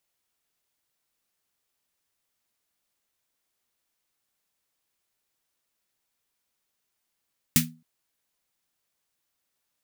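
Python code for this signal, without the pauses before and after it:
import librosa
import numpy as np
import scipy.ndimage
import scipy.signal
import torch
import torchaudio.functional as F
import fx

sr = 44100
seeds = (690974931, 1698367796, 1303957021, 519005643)

y = fx.drum_snare(sr, seeds[0], length_s=0.27, hz=160.0, second_hz=240.0, noise_db=4, noise_from_hz=1600.0, decay_s=0.34, noise_decay_s=0.17)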